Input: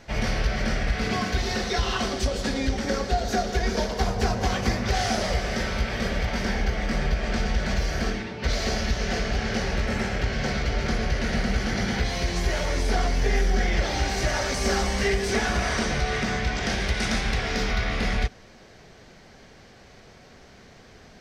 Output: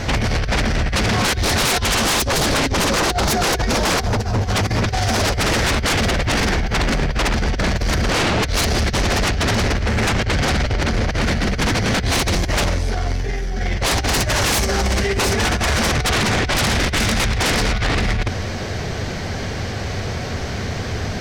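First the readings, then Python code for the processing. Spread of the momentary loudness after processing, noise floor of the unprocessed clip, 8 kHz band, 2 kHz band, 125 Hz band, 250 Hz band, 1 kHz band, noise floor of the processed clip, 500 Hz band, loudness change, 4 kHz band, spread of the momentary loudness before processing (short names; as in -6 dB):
8 LU, -50 dBFS, +11.5 dB, +7.5 dB, +8.5 dB, +6.5 dB, +7.5 dB, -25 dBFS, +6.0 dB, +7.0 dB, +10.0 dB, 3 LU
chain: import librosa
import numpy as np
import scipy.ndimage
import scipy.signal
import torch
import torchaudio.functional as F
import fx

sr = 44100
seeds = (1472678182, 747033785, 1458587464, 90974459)

y = fx.peak_eq(x, sr, hz=92.0, db=11.5, octaves=0.83)
y = fx.over_compress(y, sr, threshold_db=-27.0, ratio=-0.5)
y = fx.fold_sine(y, sr, drive_db=17, ceiling_db=-10.5)
y = y * librosa.db_to_amplitude(-4.0)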